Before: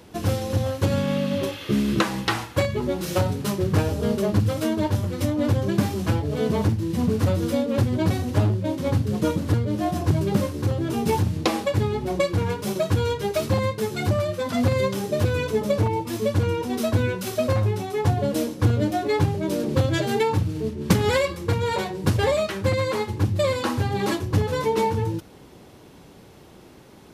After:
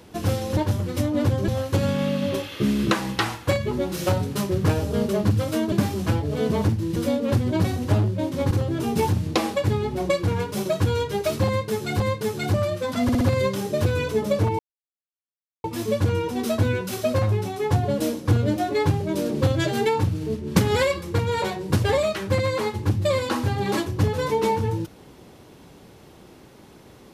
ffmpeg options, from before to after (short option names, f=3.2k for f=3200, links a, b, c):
-filter_complex "[0:a]asplit=11[a][b][c][d][e][f][g][h][i][j][k];[a]atrim=end=0.572[l];[b]atrim=start=4.808:end=5.722[m];[c]atrim=start=0.568:end=4.812[n];[d]atrim=start=5.718:end=6.962[o];[e]atrim=start=7.418:end=8.972[p];[f]atrim=start=10.608:end=14.102[q];[g]atrim=start=13.568:end=14.662[r];[h]atrim=start=14.598:end=14.662[s];[i]atrim=start=14.598:end=14.662[t];[j]atrim=start=14.598:end=15.98,asetpts=PTS-STARTPTS,afade=t=out:st=1.378:d=0.004:c=hsin,apad=pad_dur=1.05[u];[k]atrim=start=15.98,asetpts=PTS-STARTPTS,afade=t=in:d=0.004:c=hsin[v];[l][m]acrossfade=d=0.004:c1=hsin:c2=hsin[w];[w][n]acrossfade=d=0.004:c1=hsin:c2=hsin[x];[x][o]acrossfade=d=0.004:c1=hsin:c2=hsin[y];[y][p]acrossfade=d=0.004:c1=hsin:c2=hsin[z];[z][q]acrossfade=d=0.004:c1=hsin:c2=hsin[aa];[aa][r]acrossfade=d=0.004:c1=hsin:c2=hsin[ab];[ab][s]acrossfade=d=0.004:c1=hsin:c2=hsin[ac];[ac][t]acrossfade=d=0.004:c1=hsin:c2=hsin[ad];[u][v]concat=n=2:v=0:a=1[ae];[ad][ae]acrossfade=d=0.004:c1=hsin:c2=hsin"